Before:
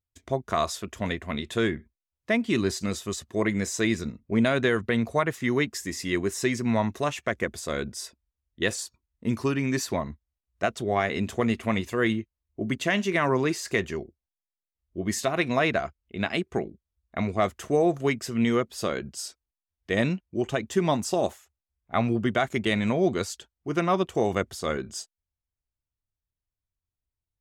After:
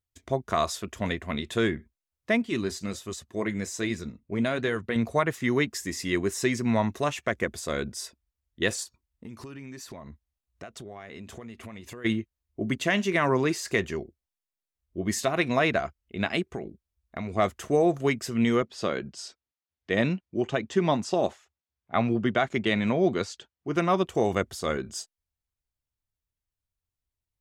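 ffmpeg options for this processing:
ffmpeg -i in.wav -filter_complex "[0:a]asettb=1/sr,asplit=3[link_01][link_02][link_03];[link_01]atrim=end=2.424[link_04];[link_02]atrim=start=2.42:end=4.96,asetpts=PTS-STARTPTS,afade=type=in:duration=0.004:curve=qsin,afade=type=out:start_time=2.536:duration=0.004:curve=qsin,flanger=delay=1.1:depth=5.9:regen=-75:speed=1.3:shape=triangular[link_05];[link_03]atrim=start=4.956[link_06];[link_04][link_05]acrossfade=duration=0.004:curve1=hsin:curve2=qsin[link_07];[link_07][link_06]acrossfade=duration=0.004:curve1=qsin:curve2=hsin,asplit=3[link_08][link_09][link_10];[link_08]afade=type=out:start_time=8.83:duration=0.02[link_11];[link_09]acompressor=threshold=-38dB:ratio=10:attack=3.2:release=140:knee=1:detection=peak,afade=type=in:start_time=8.83:duration=0.02,afade=type=out:start_time=12.04:duration=0.02[link_12];[link_10]afade=type=in:start_time=12.04:duration=0.02[link_13];[link_11][link_12][link_13]amix=inputs=3:normalize=0,asplit=3[link_14][link_15][link_16];[link_14]afade=type=out:start_time=16.51:duration=0.02[link_17];[link_15]acompressor=threshold=-29dB:ratio=6:attack=3.2:release=140:knee=1:detection=peak,afade=type=in:start_time=16.51:duration=0.02,afade=type=out:start_time=17.31:duration=0.02[link_18];[link_16]afade=type=in:start_time=17.31:duration=0.02[link_19];[link_17][link_18][link_19]amix=inputs=3:normalize=0,asettb=1/sr,asplit=3[link_20][link_21][link_22];[link_20]atrim=end=18.624[link_23];[link_21]atrim=start=18.62:end=23.76,asetpts=PTS-STARTPTS,afade=type=in:duration=0.004:curve=qsin,afade=type=out:start_time=5.136:duration=0.004:curve=qsin,highpass=100,lowpass=5400[link_24];[link_22]atrim=start=23.756[link_25];[link_23][link_24]acrossfade=duration=0.004:curve1=hsin:curve2=qsin[link_26];[link_26][link_25]acrossfade=duration=0.004:curve1=qsin:curve2=hsin" out.wav

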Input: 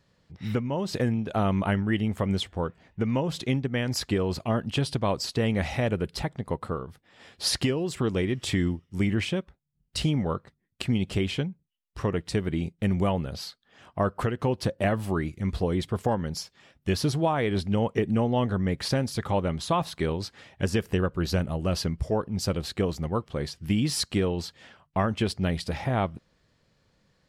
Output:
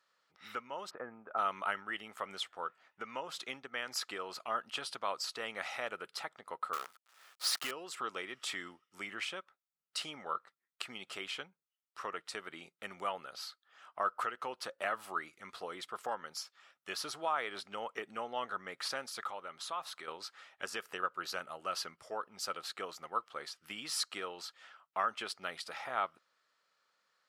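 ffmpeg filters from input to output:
ffmpeg -i in.wav -filter_complex "[0:a]asplit=3[link_01][link_02][link_03];[link_01]afade=type=out:start_time=0.89:duration=0.02[link_04];[link_02]lowpass=frequency=1500:width=0.5412,lowpass=frequency=1500:width=1.3066,afade=type=in:start_time=0.89:duration=0.02,afade=type=out:start_time=1.37:duration=0.02[link_05];[link_03]afade=type=in:start_time=1.37:duration=0.02[link_06];[link_04][link_05][link_06]amix=inputs=3:normalize=0,asettb=1/sr,asplit=3[link_07][link_08][link_09];[link_07]atrim=end=6.734[link_10];[link_08]atrim=start=6.73:end=7.71,asetpts=PTS-STARTPTS,afade=type=in:duration=0.004:curve=qsin,afade=type=out:start_time=0.976:duration=0.004:curve=qsin,acrusher=bits=6:dc=4:mix=0:aa=0.000001[link_11];[link_09]atrim=start=7.706[link_12];[link_10][link_11]acrossfade=duration=0.004:curve1=hsin:curve2=qsin[link_13];[link_13][link_12]acrossfade=duration=0.004:curve1=qsin:curve2=hsin,asettb=1/sr,asplit=3[link_14][link_15][link_16];[link_14]atrim=end=19.294[link_17];[link_15]atrim=start=19.29:end=20.08,asetpts=PTS-STARTPTS,afade=type=in:duration=0.004:curve=qsin,afade=type=out:start_time=0.786:duration=0.004:curve=qsin,acompressor=threshold=-32dB:ratio=2:attack=3.2:release=140:knee=1:detection=peak[link_18];[link_16]atrim=start=20.076[link_19];[link_17][link_18]acrossfade=duration=0.004:curve1=hsin:curve2=qsin[link_20];[link_20][link_19]acrossfade=duration=0.004:curve1=qsin:curve2=hsin,highpass=790,equalizer=frequency=1300:width_type=o:width=0.29:gain=12,volume=-6.5dB" out.wav

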